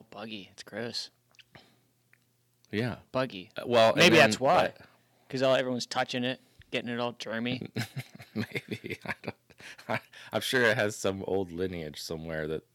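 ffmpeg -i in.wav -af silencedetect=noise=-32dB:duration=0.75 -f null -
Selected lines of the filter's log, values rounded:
silence_start: 1.04
silence_end: 2.73 | silence_duration: 1.69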